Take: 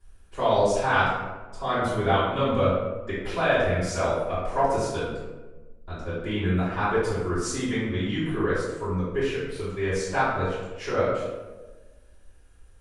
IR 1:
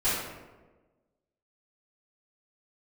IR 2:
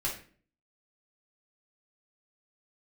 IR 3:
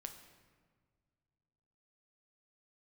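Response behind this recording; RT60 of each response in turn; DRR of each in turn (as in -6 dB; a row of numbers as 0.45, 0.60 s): 1; 1.3, 0.45, 1.7 s; -15.0, -5.0, 5.5 dB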